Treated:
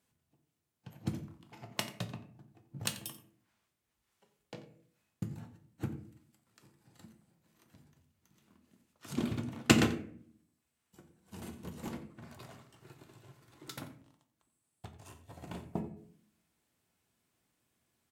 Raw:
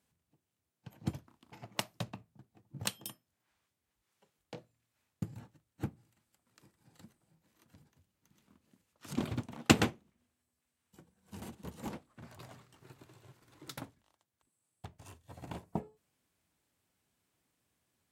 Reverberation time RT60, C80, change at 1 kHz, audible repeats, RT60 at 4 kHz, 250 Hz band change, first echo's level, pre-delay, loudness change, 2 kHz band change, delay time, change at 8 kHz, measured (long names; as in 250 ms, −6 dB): 0.55 s, 13.0 dB, −1.5 dB, 1, 0.30 s, +2.0 dB, −16.0 dB, 3 ms, +1.0 dB, +1.0 dB, 88 ms, +1.0 dB